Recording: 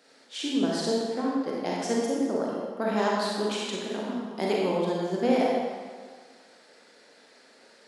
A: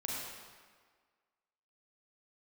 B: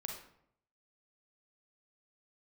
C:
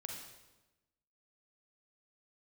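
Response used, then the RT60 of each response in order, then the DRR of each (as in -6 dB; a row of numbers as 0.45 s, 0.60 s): A; 1.6 s, 0.70 s, 1.1 s; -4.5 dB, 1.0 dB, 0.5 dB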